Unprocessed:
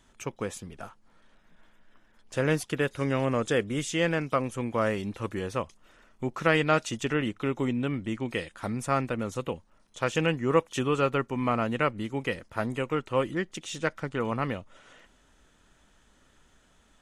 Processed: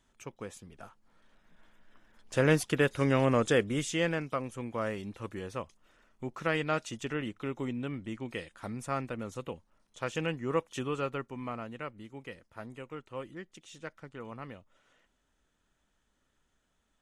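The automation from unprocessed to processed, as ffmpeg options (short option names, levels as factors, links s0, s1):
-af "volume=1.12,afade=t=in:st=0.64:d=1.79:silence=0.316228,afade=t=out:st=3.38:d=0.98:silence=0.398107,afade=t=out:st=10.82:d=0.92:silence=0.446684"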